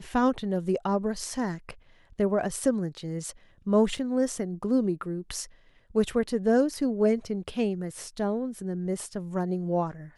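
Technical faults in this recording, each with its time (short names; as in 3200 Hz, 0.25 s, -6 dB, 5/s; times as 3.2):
3.97 gap 3.9 ms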